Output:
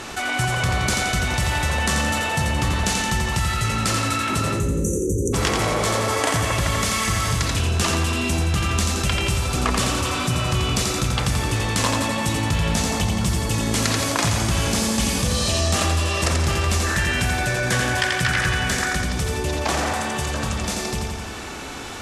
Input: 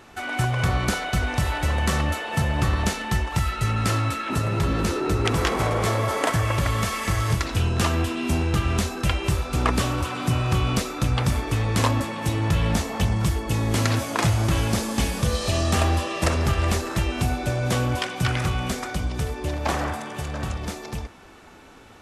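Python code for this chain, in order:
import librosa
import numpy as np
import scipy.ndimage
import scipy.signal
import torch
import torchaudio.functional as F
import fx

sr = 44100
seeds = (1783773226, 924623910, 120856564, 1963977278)

y = scipy.signal.sosfilt(scipy.signal.butter(2, 9300.0, 'lowpass', fs=sr, output='sos'), x)
y = fx.high_shelf(y, sr, hz=3900.0, db=11.0)
y = fx.spec_erase(y, sr, start_s=4.54, length_s=0.8, low_hz=580.0, high_hz=5800.0)
y = fx.peak_eq(y, sr, hz=1700.0, db=14.0, octaves=0.37, at=(16.84, 18.98))
y = fx.echo_feedback(y, sr, ms=86, feedback_pct=52, wet_db=-5.0)
y = fx.env_flatten(y, sr, amount_pct=50)
y = y * librosa.db_to_amplitude(-3.0)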